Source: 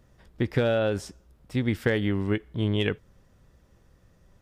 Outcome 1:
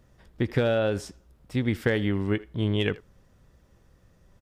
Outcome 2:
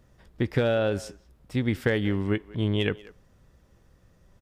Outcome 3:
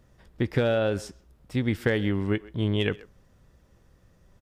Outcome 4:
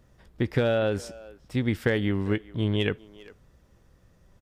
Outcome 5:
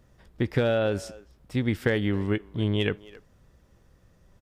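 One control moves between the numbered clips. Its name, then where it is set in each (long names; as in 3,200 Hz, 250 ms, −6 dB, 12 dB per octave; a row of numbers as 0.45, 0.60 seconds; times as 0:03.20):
far-end echo of a speakerphone, delay time: 80, 190, 130, 400, 270 milliseconds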